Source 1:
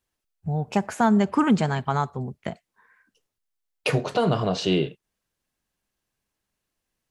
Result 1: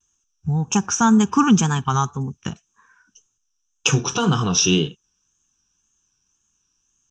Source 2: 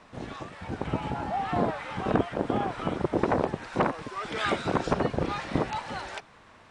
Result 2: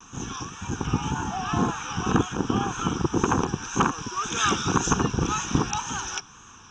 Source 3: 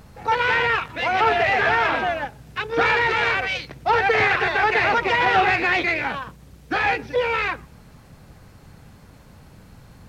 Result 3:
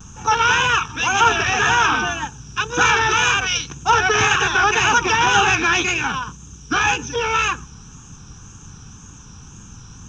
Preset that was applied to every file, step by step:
low-pass with resonance 6,100 Hz, resonance Q 13
pitch vibrato 1.9 Hz 94 cents
phaser with its sweep stopped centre 3,000 Hz, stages 8
level +6.5 dB

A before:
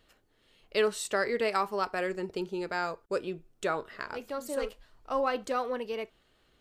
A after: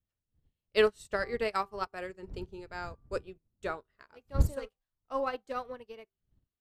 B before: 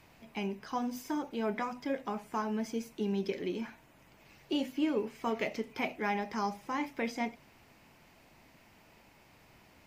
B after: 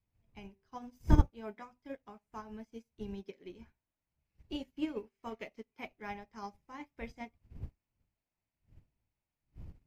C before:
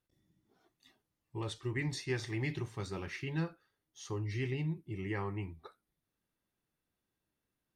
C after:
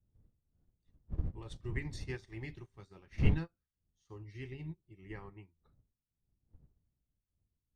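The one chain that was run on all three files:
wind on the microphone 97 Hz −40 dBFS
hum removal 390.5 Hz, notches 3
expander for the loud parts 2.5 to 1, over −47 dBFS
level +5 dB

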